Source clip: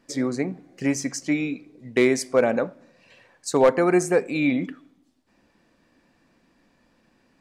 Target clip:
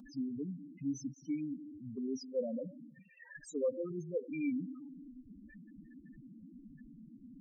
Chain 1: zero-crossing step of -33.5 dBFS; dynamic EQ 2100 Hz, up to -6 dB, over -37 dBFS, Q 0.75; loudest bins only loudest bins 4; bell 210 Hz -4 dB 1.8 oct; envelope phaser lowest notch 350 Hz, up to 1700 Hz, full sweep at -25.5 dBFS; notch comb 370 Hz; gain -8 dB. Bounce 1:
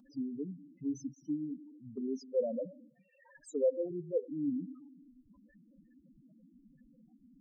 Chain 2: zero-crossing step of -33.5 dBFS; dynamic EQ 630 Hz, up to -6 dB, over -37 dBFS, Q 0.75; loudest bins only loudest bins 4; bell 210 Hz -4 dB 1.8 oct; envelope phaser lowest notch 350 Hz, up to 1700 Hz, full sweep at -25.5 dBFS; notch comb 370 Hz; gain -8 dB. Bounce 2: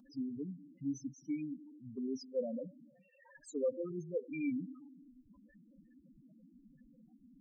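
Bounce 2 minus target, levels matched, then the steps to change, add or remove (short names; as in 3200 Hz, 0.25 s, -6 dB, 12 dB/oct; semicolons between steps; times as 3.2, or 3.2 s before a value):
zero-crossing step: distortion -7 dB
change: zero-crossing step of -26 dBFS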